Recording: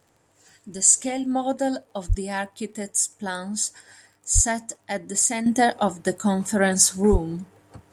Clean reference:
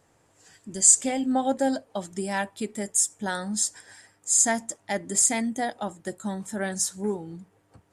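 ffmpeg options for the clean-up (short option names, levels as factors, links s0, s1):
-filter_complex "[0:a]adeclick=t=4,asplit=3[s0][s1][s2];[s0]afade=t=out:st=2.08:d=0.02[s3];[s1]highpass=f=140:w=0.5412,highpass=f=140:w=1.3066,afade=t=in:st=2.08:d=0.02,afade=t=out:st=2.2:d=0.02[s4];[s2]afade=t=in:st=2.2:d=0.02[s5];[s3][s4][s5]amix=inputs=3:normalize=0,asplit=3[s6][s7][s8];[s6]afade=t=out:st=4.34:d=0.02[s9];[s7]highpass=f=140:w=0.5412,highpass=f=140:w=1.3066,afade=t=in:st=4.34:d=0.02,afade=t=out:st=4.46:d=0.02[s10];[s8]afade=t=in:st=4.46:d=0.02[s11];[s9][s10][s11]amix=inputs=3:normalize=0,asplit=3[s12][s13][s14];[s12]afade=t=out:st=7.11:d=0.02[s15];[s13]highpass=f=140:w=0.5412,highpass=f=140:w=1.3066,afade=t=in:st=7.11:d=0.02,afade=t=out:st=7.23:d=0.02[s16];[s14]afade=t=in:st=7.23:d=0.02[s17];[s15][s16][s17]amix=inputs=3:normalize=0,asetnsamples=n=441:p=0,asendcmd='5.46 volume volume -9.5dB',volume=1"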